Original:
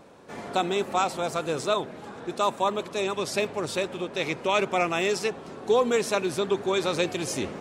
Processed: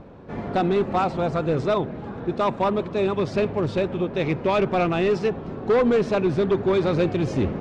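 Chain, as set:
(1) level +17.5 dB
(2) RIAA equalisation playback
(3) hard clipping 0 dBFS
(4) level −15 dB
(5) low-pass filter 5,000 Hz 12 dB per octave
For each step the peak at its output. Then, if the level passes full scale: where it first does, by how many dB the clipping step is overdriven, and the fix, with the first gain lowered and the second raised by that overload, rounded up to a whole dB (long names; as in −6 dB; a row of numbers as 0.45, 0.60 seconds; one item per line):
+6.5, +8.5, 0.0, −15.0, −14.5 dBFS
step 1, 8.5 dB
step 1 +8.5 dB, step 4 −6 dB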